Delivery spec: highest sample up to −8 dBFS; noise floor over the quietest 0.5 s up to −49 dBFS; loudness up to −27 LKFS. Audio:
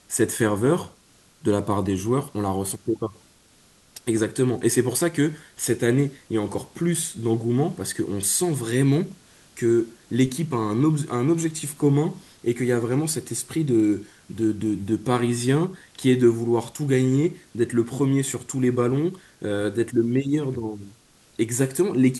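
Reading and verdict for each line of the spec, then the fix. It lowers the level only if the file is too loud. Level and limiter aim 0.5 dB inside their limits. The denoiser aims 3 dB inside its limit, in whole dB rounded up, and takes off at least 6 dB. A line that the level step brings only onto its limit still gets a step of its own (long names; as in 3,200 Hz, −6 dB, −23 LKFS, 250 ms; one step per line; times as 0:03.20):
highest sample −6.0 dBFS: out of spec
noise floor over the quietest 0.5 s −56 dBFS: in spec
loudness −23.5 LKFS: out of spec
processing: level −4 dB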